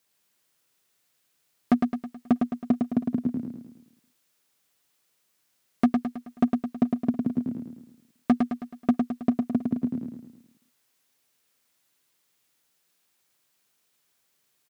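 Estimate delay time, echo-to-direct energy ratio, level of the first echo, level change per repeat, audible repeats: 107 ms, -3.5 dB, -4.5 dB, -6.5 dB, 5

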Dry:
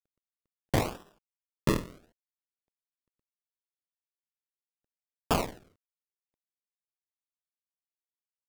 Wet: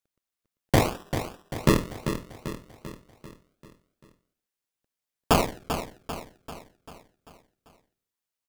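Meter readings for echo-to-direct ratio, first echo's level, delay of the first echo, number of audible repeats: -7.5 dB, -9.0 dB, 392 ms, 5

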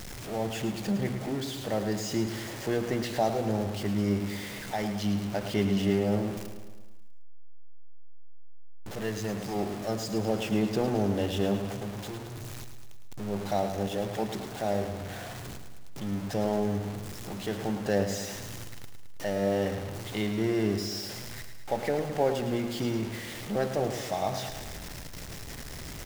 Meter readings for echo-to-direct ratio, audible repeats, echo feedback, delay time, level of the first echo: -7.0 dB, 6, 59%, 108 ms, -9.0 dB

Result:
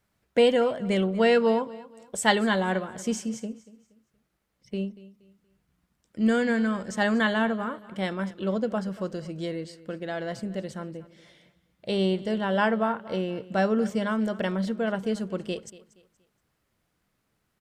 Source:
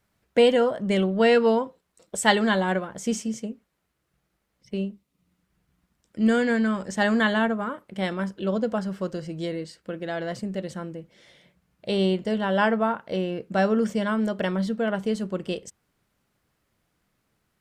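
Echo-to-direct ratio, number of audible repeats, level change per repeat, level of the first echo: -18.0 dB, 2, -10.0 dB, -18.5 dB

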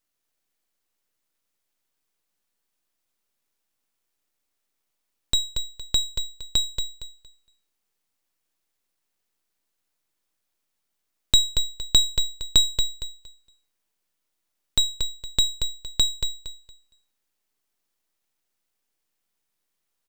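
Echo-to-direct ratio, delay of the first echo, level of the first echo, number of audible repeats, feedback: -7.0 dB, 232 ms, -7.0 dB, 3, 22%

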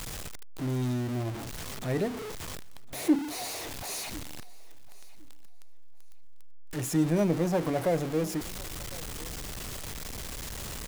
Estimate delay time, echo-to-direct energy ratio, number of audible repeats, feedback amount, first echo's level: 1056 ms, -22.0 dB, 1, no regular repeats, -22.0 dB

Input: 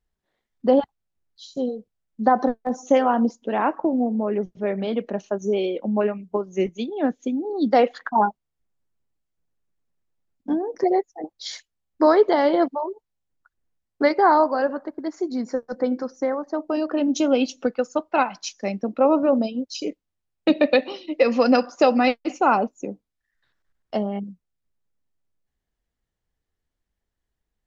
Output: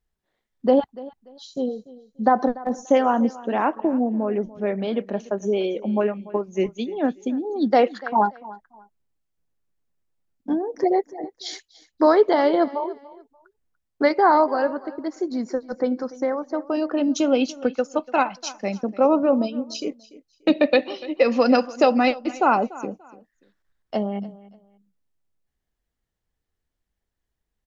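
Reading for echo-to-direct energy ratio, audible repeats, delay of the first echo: -19.0 dB, 2, 291 ms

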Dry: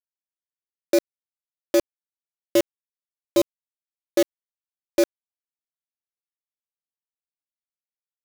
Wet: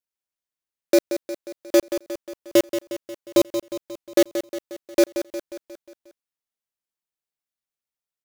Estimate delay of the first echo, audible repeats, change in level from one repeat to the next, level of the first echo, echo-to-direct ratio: 179 ms, 5, -5.0 dB, -10.0 dB, -8.5 dB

